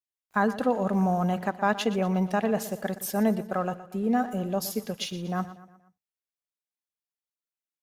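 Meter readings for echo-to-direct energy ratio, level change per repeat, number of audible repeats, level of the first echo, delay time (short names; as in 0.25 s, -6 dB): -14.0 dB, -6.5 dB, 4, -15.0 dB, 0.119 s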